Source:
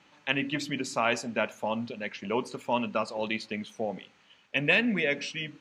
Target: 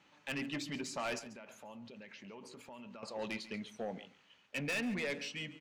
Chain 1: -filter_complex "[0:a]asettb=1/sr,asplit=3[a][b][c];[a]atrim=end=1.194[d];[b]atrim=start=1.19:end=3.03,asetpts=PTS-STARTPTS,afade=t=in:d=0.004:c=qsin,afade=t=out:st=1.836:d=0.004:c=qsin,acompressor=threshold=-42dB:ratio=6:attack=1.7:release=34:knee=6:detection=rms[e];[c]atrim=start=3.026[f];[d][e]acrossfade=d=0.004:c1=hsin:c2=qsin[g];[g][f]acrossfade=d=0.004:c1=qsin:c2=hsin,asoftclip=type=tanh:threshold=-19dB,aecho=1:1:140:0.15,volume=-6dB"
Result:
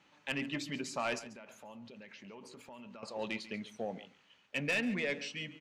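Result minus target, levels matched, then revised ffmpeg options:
soft clip: distortion -6 dB
-filter_complex "[0:a]asettb=1/sr,asplit=3[a][b][c];[a]atrim=end=1.194[d];[b]atrim=start=1.19:end=3.03,asetpts=PTS-STARTPTS,afade=t=in:d=0.004:c=qsin,afade=t=out:st=1.836:d=0.004:c=qsin,acompressor=threshold=-42dB:ratio=6:attack=1.7:release=34:knee=6:detection=rms[e];[c]atrim=start=3.026[f];[d][e]acrossfade=d=0.004:c1=hsin:c2=qsin[g];[g][f]acrossfade=d=0.004:c1=qsin:c2=hsin,asoftclip=type=tanh:threshold=-26dB,aecho=1:1:140:0.15,volume=-6dB"

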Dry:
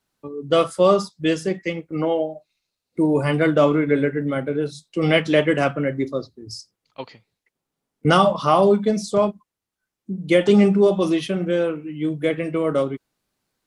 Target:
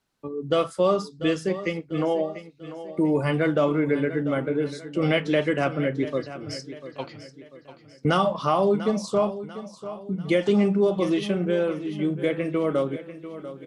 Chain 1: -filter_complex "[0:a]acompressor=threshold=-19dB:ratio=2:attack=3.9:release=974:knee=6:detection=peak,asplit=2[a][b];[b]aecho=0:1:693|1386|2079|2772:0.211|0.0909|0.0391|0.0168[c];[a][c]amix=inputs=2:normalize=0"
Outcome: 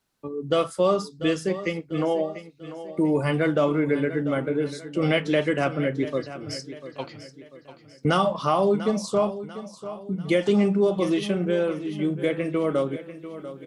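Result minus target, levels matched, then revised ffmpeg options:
8000 Hz band +2.5 dB
-filter_complex "[0:a]acompressor=threshold=-19dB:ratio=2:attack=3.9:release=974:knee=6:detection=peak,highshelf=f=9.3k:g=-8,asplit=2[a][b];[b]aecho=0:1:693|1386|2079|2772:0.211|0.0909|0.0391|0.0168[c];[a][c]amix=inputs=2:normalize=0"

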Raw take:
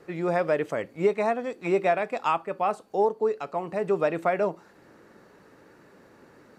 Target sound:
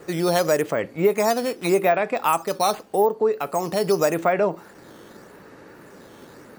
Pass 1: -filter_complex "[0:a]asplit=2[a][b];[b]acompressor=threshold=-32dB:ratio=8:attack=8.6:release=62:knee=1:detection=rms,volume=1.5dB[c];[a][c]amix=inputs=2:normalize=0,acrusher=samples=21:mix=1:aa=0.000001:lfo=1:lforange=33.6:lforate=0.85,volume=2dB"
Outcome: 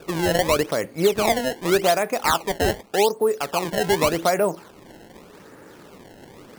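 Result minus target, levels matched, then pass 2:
decimation with a swept rate: distortion +14 dB
-filter_complex "[0:a]asplit=2[a][b];[b]acompressor=threshold=-32dB:ratio=8:attack=8.6:release=62:knee=1:detection=rms,volume=1.5dB[c];[a][c]amix=inputs=2:normalize=0,acrusher=samples=5:mix=1:aa=0.000001:lfo=1:lforange=8:lforate=0.85,volume=2dB"

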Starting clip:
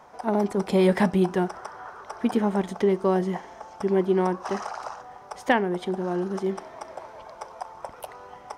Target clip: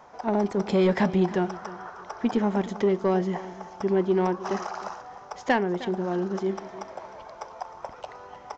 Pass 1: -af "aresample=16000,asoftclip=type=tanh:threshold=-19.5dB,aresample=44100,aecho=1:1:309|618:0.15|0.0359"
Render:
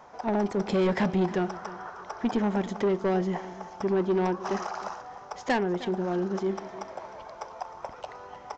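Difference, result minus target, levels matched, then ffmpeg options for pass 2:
soft clip: distortion +9 dB
-af "aresample=16000,asoftclip=type=tanh:threshold=-12.5dB,aresample=44100,aecho=1:1:309|618:0.15|0.0359"

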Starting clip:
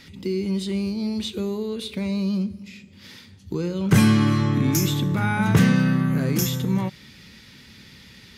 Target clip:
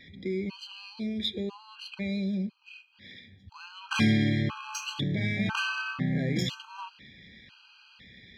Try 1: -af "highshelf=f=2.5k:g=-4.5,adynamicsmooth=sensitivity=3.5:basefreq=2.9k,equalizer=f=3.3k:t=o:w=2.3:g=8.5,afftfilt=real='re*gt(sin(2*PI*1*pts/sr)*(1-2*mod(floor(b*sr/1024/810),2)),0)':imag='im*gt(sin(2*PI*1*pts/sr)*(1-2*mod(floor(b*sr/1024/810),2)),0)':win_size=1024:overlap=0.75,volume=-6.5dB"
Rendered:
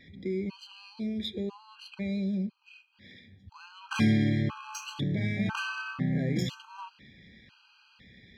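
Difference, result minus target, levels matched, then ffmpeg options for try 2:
4000 Hz band -4.5 dB
-af "highshelf=f=2.5k:g=-4.5,adynamicsmooth=sensitivity=3.5:basefreq=2.9k,equalizer=f=3.3k:t=o:w=2.3:g=14.5,afftfilt=real='re*gt(sin(2*PI*1*pts/sr)*(1-2*mod(floor(b*sr/1024/810),2)),0)':imag='im*gt(sin(2*PI*1*pts/sr)*(1-2*mod(floor(b*sr/1024/810),2)),0)':win_size=1024:overlap=0.75,volume=-6.5dB"

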